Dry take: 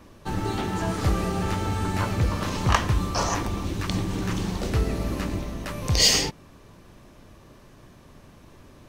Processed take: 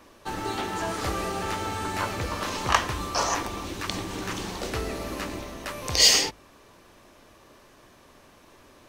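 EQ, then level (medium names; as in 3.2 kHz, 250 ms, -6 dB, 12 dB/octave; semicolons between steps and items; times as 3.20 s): peaking EQ 160 Hz -6 dB 0.76 oct; bass shelf 240 Hz -11.5 dB; hum notches 50/100 Hz; +1.5 dB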